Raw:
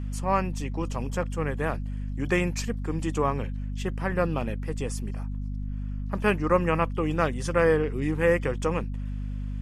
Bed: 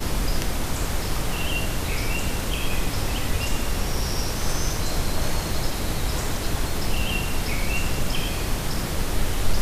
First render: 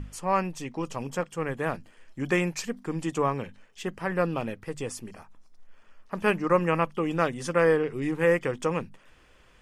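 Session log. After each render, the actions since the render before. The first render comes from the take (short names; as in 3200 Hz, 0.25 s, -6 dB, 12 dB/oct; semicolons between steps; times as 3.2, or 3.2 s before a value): notches 50/100/150/200/250 Hz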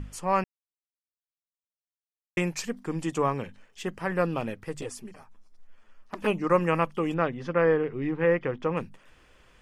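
0.44–2.37 mute; 4.81–6.42 envelope flanger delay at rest 11.8 ms, full sweep at -21.5 dBFS; 7.14–8.77 air absorption 280 m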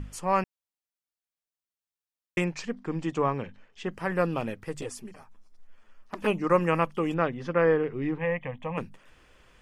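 2.44–3.91 air absorption 110 m; 8.18–8.78 fixed phaser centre 1400 Hz, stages 6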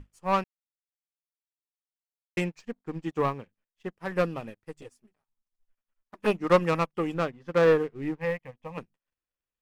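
sample leveller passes 2; upward expander 2.5:1, over -38 dBFS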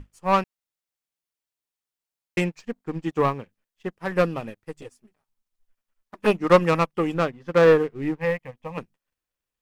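gain +5 dB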